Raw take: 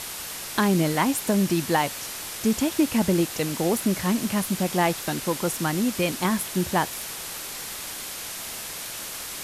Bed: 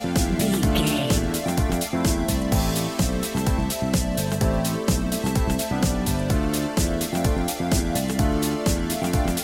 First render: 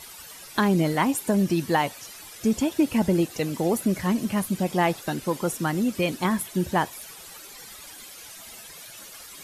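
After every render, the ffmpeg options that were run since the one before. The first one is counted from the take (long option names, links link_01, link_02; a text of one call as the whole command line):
ffmpeg -i in.wav -af "afftdn=noise_reduction=13:noise_floor=-35" out.wav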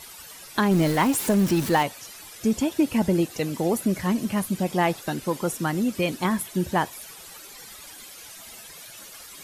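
ffmpeg -i in.wav -filter_complex "[0:a]asettb=1/sr,asplit=3[link_01][link_02][link_03];[link_01]atrim=end=0.714[link_04];[link_02]atrim=start=0.71:end=1.83,asetpts=PTS-STARTPTS,afade=type=in:duration=0.004:curve=qsin,afade=type=out:start_time=1.116:duration=0.004:curve=qsin,aeval=exprs='val(0)+0.5*0.0422*sgn(val(0))':channel_layout=same[link_05];[link_03]atrim=start=1.826[link_06];[link_04][link_05]acrossfade=duration=0.004:curve1=hsin:curve2=qsin[link_07];[link_07][link_06]acrossfade=duration=0.004:curve1=qsin:curve2=hsin" out.wav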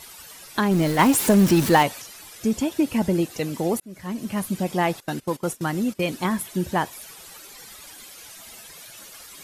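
ffmpeg -i in.wav -filter_complex "[0:a]asettb=1/sr,asplit=3[link_01][link_02][link_03];[link_01]atrim=end=5.004[link_04];[link_02]atrim=start=5:end=6.01,asetpts=PTS-STARTPTS,afade=type=in:duration=0.004:curve=qsin,afade=type=out:start_time=1.006:duration=0.004:curve=qsin,agate=range=-16dB:threshold=-32dB:ratio=16:release=100:detection=peak[link_05];[link_03]atrim=start=6.006[link_06];[link_04][link_05]acrossfade=duration=0.004:curve1=hsin:curve2=qsin[link_07];[link_07][link_06]acrossfade=duration=0.004:curve1=qsin:curve2=hsin,asplit=4[link_08][link_09][link_10][link_11];[link_08]atrim=end=0.992[link_12];[link_09]atrim=start=0.988:end=2.022,asetpts=PTS-STARTPTS,volume=4.5dB[link_13];[link_10]atrim=start=2.018:end=3.8,asetpts=PTS-STARTPTS,afade=type=out:start_time=1.778:duration=0.004:curve=hsin[link_14];[link_11]atrim=start=3.8,asetpts=PTS-STARTPTS,afade=type=in:duration=0.66[link_15];[link_12][link_13]acrossfade=duration=0.004:curve1=hsin:curve2=hsin[link_16];[link_14][link_15]concat=n=2:v=0:a=1[link_17];[link_16][link_17]acrossfade=duration=0.004:curve1=hsin:curve2=hsin" out.wav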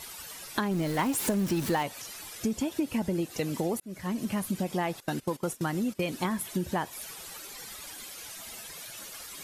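ffmpeg -i in.wav -af "acompressor=threshold=-27dB:ratio=4" out.wav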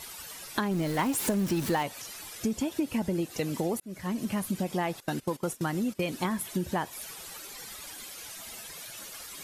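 ffmpeg -i in.wav -af anull out.wav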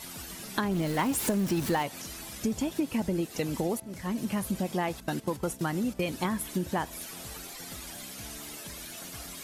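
ffmpeg -i in.wav -i bed.wav -filter_complex "[1:a]volume=-25.5dB[link_01];[0:a][link_01]amix=inputs=2:normalize=0" out.wav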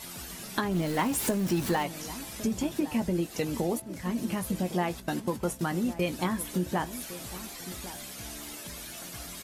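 ffmpeg -i in.wav -filter_complex "[0:a]asplit=2[link_01][link_02];[link_02]adelay=17,volume=-10.5dB[link_03];[link_01][link_03]amix=inputs=2:normalize=0,asplit=2[link_04][link_05];[link_05]adelay=1108,volume=-14dB,highshelf=frequency=4000:gain=-24.9[link_06];[link_04][link_06]amix=inputs=2:normalize=0" out.wav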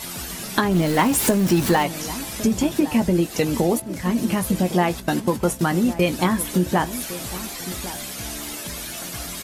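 ffmpeg -i in.wav -af "volume=9.5dB" out.wav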